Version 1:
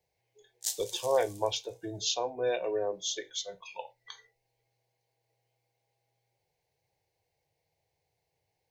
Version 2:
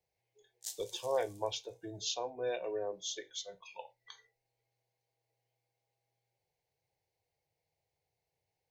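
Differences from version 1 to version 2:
speech −6.0 dB
background −9.5 dB

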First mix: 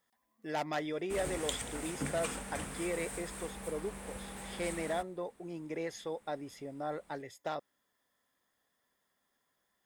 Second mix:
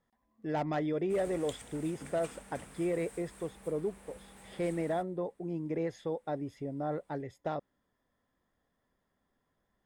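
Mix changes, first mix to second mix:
speech: add spectral tilt −3.5 dB per octave
background −9.5 dB

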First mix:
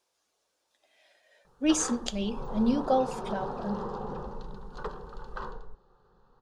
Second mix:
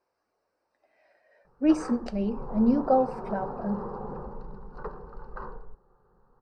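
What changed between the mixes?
speech +3.5 dB
master: add moving average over 13 samples

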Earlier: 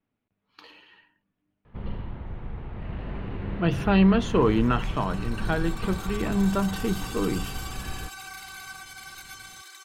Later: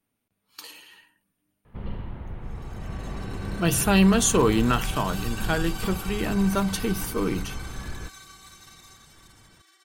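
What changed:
speech: remove high-frequency loss of the air 310 metres
second sound: entry −1.80 s

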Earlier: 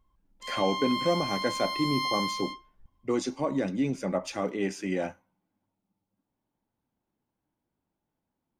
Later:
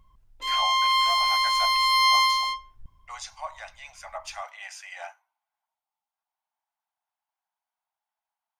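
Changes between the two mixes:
speech: add Butterworth high-pass 680 Hz 72 dB per octave
background +11.0 dB

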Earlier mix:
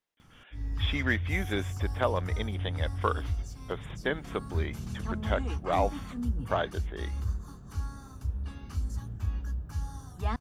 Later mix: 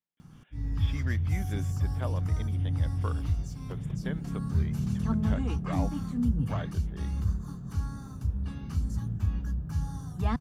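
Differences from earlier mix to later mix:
speech −11.5 dB
master: add parametric band 160 Hz +13 dB 1.1 octaves

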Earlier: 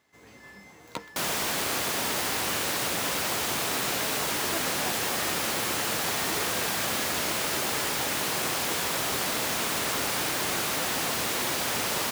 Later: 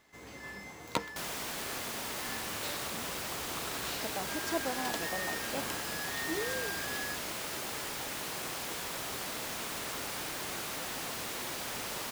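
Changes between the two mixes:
first sound +4.0 dB
second sound −10.0 dB
master: remove high-pass filter 61 Hz

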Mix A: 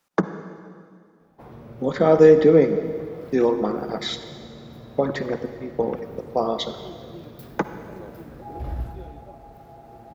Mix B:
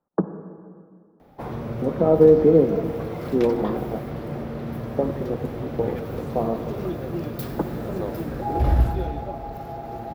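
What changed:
speech: add Gaussian smoothing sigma 8.4 samples
background +11.5 dB

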